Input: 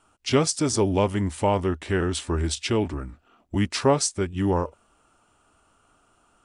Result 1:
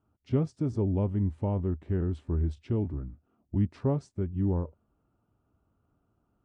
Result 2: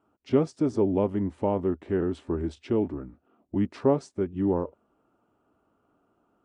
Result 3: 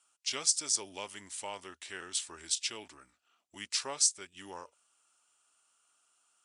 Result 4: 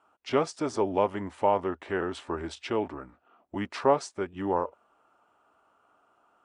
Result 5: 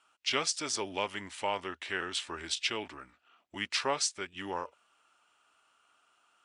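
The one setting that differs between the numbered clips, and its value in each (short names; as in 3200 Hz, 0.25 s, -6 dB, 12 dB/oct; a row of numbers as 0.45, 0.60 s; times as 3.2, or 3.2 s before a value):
band-pass, frequency: 110, 300, 7300, 820, 2800 Hz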